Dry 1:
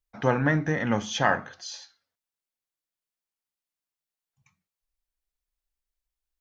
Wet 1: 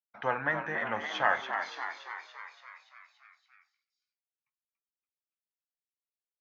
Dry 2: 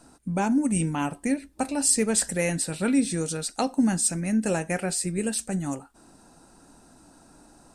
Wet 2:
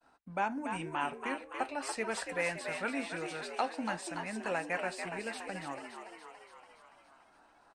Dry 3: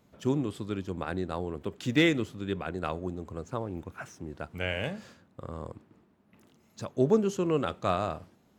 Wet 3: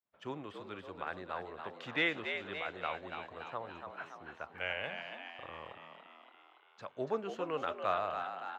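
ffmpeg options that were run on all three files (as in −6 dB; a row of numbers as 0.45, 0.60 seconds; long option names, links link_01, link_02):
-filter_complex "[0:a]agate=range=-33dB:threshold=-50dB:ratio=3:detection=peak,acrossover=split=590 3500:gain=0.141 1 0.0708[link_01][link_02][link_03];[link_01][link_02][link_03]amix=inputs=3:normalize=0,asplit=9[link_04][link_05][link_06][link_07][link_08][link_09][link_10][link_11][link_12];[link_05]adelay=285,afreqshift=77,volume=-7dB[link_13];[link_06]adelay=570,afreqshift=154,volume=-11.3dB[link_14];[link_07]adelay=855,afreqshift=231,volume=-15.6dB[link_15];[link_08]adelay=1140,afreqshift=308,volume=-19.9dB[link_16];[link_09]adelay=1425,afreqshift=385,volume=-24.2dB[link_17];[link_10]adelay=1710,afreqshift=462,volume=-28.5dB[link_18];[link_11]adelay=1995,afreqshift=539,volume=-32.8dB[link_19];[link_12]adelay=2280,afreqshift=616,volume=-37.1dB[link_20];[link_04][link_13][link_14][link_15][link_16][link_17][link_18][link_19][link_20]amix=inputs=9:normalize=0,volume=-2dB"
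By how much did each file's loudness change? −6.5, −11.5, −8.0 LU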